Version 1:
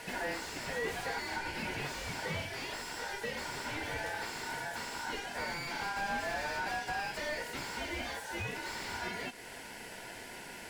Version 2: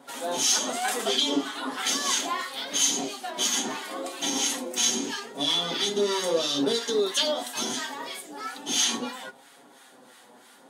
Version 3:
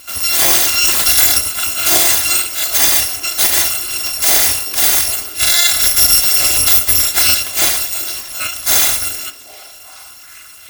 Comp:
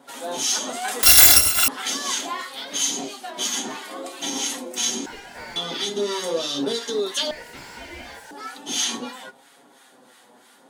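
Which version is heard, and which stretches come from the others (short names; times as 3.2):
2
1.03–1.68 from 3
5.06–5.56 from 1
7.31–8.31 from 1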